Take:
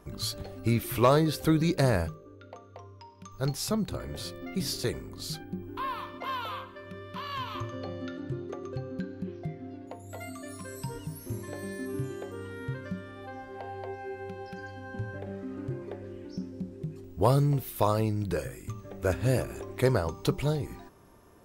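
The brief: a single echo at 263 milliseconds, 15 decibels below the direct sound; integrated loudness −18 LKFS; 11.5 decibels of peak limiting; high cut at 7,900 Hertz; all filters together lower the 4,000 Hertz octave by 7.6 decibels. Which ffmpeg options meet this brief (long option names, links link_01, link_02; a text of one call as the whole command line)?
ffmpeg -i in.wav -af "lowpass=7900,equalizer=frequency=4000:width_type=o:gain=-9,alimiter=limit=-23.5dB:level=0:latency=1,aecho=1:1:263:0.178,volume=19dB" out.wav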